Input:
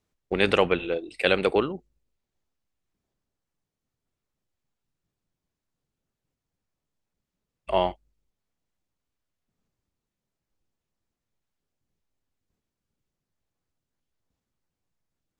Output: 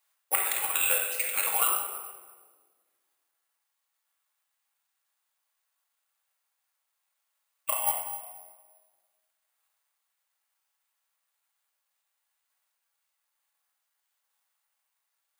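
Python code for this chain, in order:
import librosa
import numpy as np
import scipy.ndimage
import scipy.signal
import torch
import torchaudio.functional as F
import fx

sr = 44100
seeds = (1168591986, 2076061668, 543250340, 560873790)

y = scipy.signal.sosfilt(scipy.signal.butter(4, 820.0, 'highpass', fs=sr, output='sos'), x)
y = fx.over_compress(y, sr, threshold_db=-34.0, ratio=-0.5)
y = fx.room_shoebox(y, sr, seeds[0], volume_m3=1500.0, walls='mixed', distance_m=2.3)
y = (np.kron(scipy.signal.resample_poly(y, 1, 4), np.eye(4)[0]) * 4)[:len(y)]
y = y * 10.0 ** (-1.5 / 20.0)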